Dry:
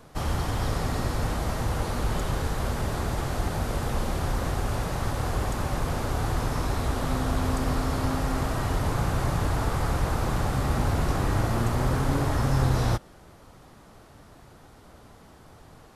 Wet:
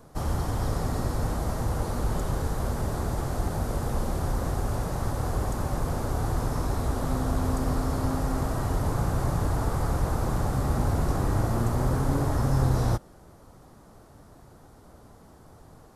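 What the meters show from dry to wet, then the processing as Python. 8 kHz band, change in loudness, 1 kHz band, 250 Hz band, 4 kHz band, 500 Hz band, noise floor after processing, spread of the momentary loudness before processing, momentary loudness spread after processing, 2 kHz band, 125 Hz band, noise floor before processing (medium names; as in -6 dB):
-1.5 dB, -0.5 dB, -2.0 dB, 0.0 dB, -6.0 dB, -0.5 dB, -52 dBFS, 4 LU, 4 LU, -5.5 dB, 0.0 dB, -52 dBFS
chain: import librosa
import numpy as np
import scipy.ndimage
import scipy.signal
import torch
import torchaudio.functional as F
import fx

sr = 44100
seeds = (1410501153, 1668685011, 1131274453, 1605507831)

y = fx.peak_eq(x, sr, hz=2700.0, db=-9.5, octaves=1.6)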